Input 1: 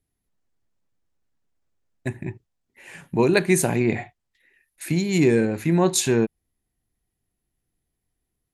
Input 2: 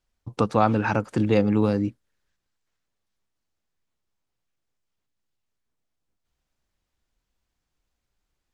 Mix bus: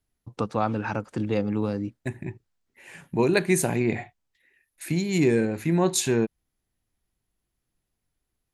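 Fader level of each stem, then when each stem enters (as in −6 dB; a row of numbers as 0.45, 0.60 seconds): −3.0, −5.5 decibels; 0.00, 0.00 seconds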